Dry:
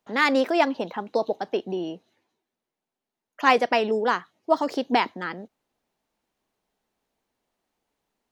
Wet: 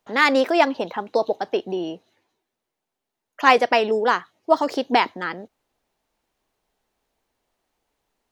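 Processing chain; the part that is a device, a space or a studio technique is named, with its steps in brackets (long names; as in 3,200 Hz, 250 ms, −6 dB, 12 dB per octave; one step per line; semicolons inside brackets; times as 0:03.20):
low shelf boost with a cut just above (low-shelf EQ 72 Hz +6 dB; parametric band 200 Hz −5 dB 1.1 octaves)
level +4 dB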